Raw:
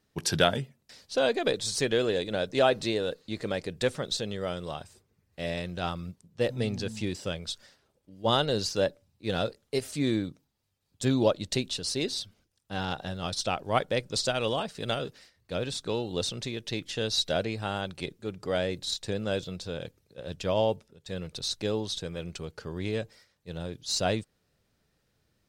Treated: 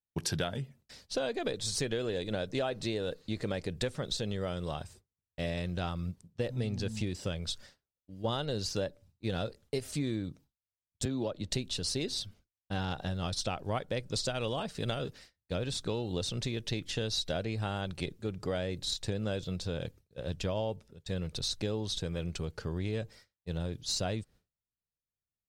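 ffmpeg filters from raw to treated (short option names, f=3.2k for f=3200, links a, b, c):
-filter_complex "[0:a]asettb=1/sr,asplit=3[a][b][c];[a]atrim=end=11.054[d];[b]atrim=start=11.05:end=11.51,asetpts=PTS-STARTPTS,afade=t=in:d=0.004:c=qsin,afade=t=out:st=0.456:d=0.004:c=qsin,acrossover=split=190|1200|4200[e][f][g][h];[e]acompressor=threshold=-42dB:ratio=3[i];[f]acompressor=threshold=-25dB:ratio=3[j];[g]acompressor=threshold=-43dB:ratio=3[k];[h]acompressor=threshold=-58dB:ratio=3[l];[i][j][k][l]amix=inputs=4:normalize=0[m];[c]atrim=start=11.506[n];[d][m]acrossfade=d=0.004:c1=hsin:c2=qsin[o];[o][n]acrossfade=d=0.004:c1=qsin:c2=hsin,agate=range=-33dB:threshold=-50dB:ratio=3:detection=peak,lowshelf=f=120:g=11,acompressor=threshold=-30dB:ratio=6"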